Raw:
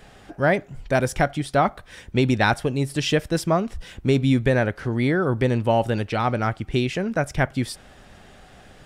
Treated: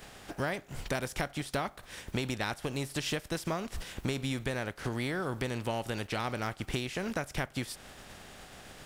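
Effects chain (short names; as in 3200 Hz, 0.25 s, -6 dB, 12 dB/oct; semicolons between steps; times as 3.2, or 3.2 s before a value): spectral contrast lowered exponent 0.65; compressor 6:1, threshold -28 dBFS, peak gain reduction 14 dB; gain -2.5 dB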